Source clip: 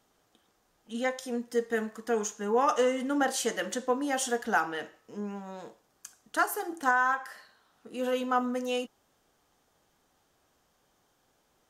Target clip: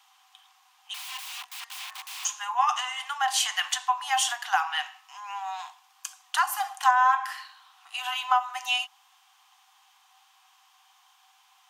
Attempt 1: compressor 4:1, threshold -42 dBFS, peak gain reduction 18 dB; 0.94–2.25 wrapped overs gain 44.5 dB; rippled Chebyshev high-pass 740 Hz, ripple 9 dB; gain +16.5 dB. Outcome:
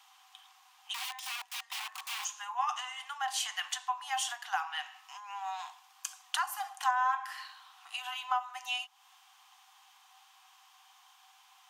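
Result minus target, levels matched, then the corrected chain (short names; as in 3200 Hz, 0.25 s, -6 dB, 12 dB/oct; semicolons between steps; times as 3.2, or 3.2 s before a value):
compressor: peak gain reduction +8.5 dB
compressor 4:1, threshold -30.5 dBFS, peak gain reduction 9 dB; 0.94–2.25 wrapped overs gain 44.5 dB; rippled Chebyshev high-pass 740 Hz, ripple 9 dB; gain +16.5 dB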